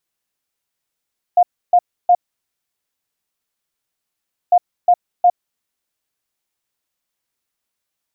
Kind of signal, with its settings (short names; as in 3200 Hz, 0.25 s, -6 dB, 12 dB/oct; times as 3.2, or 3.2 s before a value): beep pattern sine 710 Hz, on 0.06 s, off 0.30 s, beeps 3, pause 2.37 s, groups 2, -7 dBFS